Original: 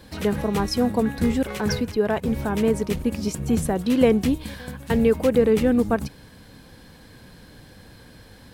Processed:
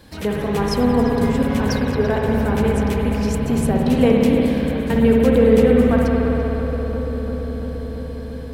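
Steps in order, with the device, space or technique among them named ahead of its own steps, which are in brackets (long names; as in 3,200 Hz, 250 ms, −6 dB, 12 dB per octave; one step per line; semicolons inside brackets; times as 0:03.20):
dub delay into a spring reverb (feedback echo with a low-pass in the loop 341 ms, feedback 83%, low-pass 1,800 Hz, level −8 dB; spring reverb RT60 3.8 s, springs 57 ms, chirp 45 ms, DRR −2 dB)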